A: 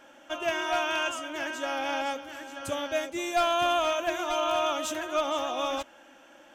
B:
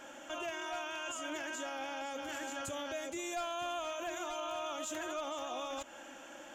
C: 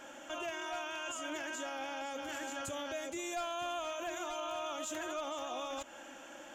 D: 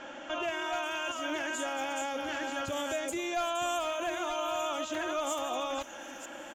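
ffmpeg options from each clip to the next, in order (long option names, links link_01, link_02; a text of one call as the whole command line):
ffmpeg -i in.wav -af "equalizer=frequency=7000:width=7.2:gain=13,acompressor=threshold=-34dB:ratio=6,alimiter=level_in=11dB:limit=-24dB:level=0:latency=1:release=30,volume=-11dB,volume=3dB" out.wav
ffmpeg -i in.wav -af anull out.wav
ffmpeg -i in.wav -filter_complex "[0:a]acrossover=split=5700[link_01][link_02];[link_02]adelay=430[link_03];[link_01][link_03]amix=inputs=2:normalize=0,volume=6.5dB" out.wav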